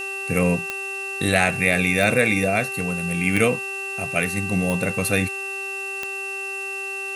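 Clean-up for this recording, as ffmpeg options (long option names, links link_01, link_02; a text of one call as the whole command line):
ffmpeg -i in.wav -af "adeclick=threshold=4,bandreject=frequency=390.7:width_type=h:width=4,bandreject=frequency=781.4:width_type=h:width=4,bandreject=frequency=1172.1:width_type=h:width=4,bandreject=frequency=1562.8:width_type=h:width=4,bandreject=frequency=1953.5:width_type=h:width=4,bandreject=frequency=2700:width=30,afftdn=noise_reduction=30:noise_floor=-30" out.wav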